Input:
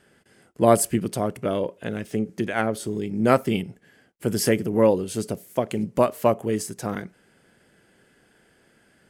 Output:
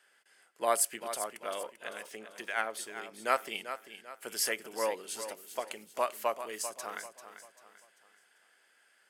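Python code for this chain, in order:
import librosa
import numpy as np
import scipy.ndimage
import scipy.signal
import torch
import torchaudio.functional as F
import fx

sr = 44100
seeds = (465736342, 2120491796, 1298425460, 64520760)

p1 = scipy.signal.sosfilt(scipy.signal.butter(2, 960.0, 'highpass', fs=sr, output='sos'), x)
p2 = p1 + fx.echo_feedback(p1, sr, ms=392, feedback_pct=39, wet_db=-11, dry=0)
y = F.gain(torch.from_numpy(p2), -4.0).numpy()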